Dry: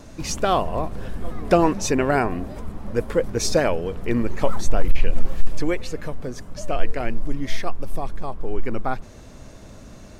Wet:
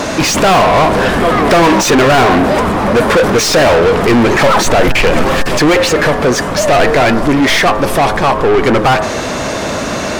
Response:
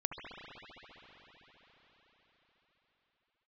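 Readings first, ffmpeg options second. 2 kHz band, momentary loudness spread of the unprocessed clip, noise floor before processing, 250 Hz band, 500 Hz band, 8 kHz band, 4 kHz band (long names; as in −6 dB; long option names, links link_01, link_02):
+20.0 dB, 14 LU, −42 dBFS, +14.5 dB, +15.0 dB, +14.5 dB, +19.0 dB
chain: -filter_complex "[0:a]bandreject=frequency=106.6:width_type=h:width=4,bandreject=frequency=213.2:width_type=h:width=4,bandreject=frequency=319.8:width_type=h:width=4,bandreject=frequency=426.4:width_type=h:width=4,bandreject=frequency=533:width_type=h:width=4,bandreject=frequency=639.6:width_type=h:width=4,bandreject=frequency=746.2:width_type=h:width=4,bandreject=frequency=852.8:width_type=h:width=4,bandreject=frequency=959.4:width_type=h:width=4,bandreject=frequency=1066:width_type=h:width=4,bandreject=frequency=1172.6:width_type=h:width=4,bandreject=frequency=1279.2:width_type=h:width=4,bandreject=frequency=1385.8:width_type=h:width=4,bandreject=frequency=1492.4:width_type=h:width=4,bandreject=frequency=1599:width_type=h:width=4,bandreject=frequency=1705.6:width_type=h:width=4,bandreject=frequency=1812.2:width_type=h:width=4,asplit=2[link_01][link_02];[link_02]highpass=frequency=720:poles=1,volume=41dB,asoftclip=type=tanh:threshold=-2dB[link_03];[link_01][link_03]amix=inputs=2:normalize=0,lowpass=frequency=3000:poles=1,volume=-6dB,volume=1dB"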